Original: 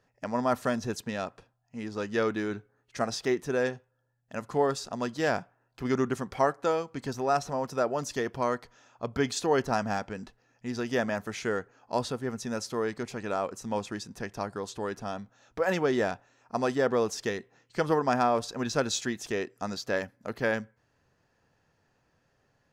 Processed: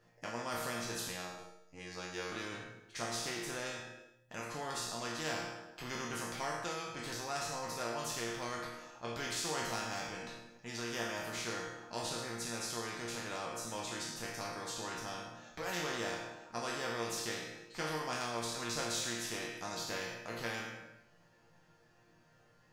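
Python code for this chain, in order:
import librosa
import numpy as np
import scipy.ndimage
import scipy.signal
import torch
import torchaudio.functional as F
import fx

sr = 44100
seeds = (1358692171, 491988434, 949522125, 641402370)

y = fx.spec_trails(x, sr, decay_s=0.53)
y = fx.robotise(y, sr, hz=90.6, at=(1.08, 2.32))
y = fx.resonator_bank(y, sr, root=46, chord='sus4', decay_s=0.44)
y = fx.echo_feedback(y, sr, ms=106, feedback_pct=42, wet_db=-15.0)
y = fx.spectral_comp(y, sr, ratio=2.0)
y = y * librosa.db_to_amplitude(4.5)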